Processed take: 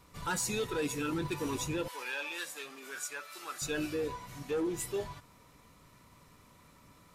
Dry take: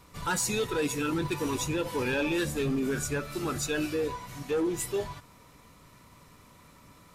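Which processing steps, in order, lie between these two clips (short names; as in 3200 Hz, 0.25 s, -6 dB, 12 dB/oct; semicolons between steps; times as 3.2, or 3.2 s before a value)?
1.88–3.62 HPF 920 Hz 12 dB/oct; gain -4.5 dB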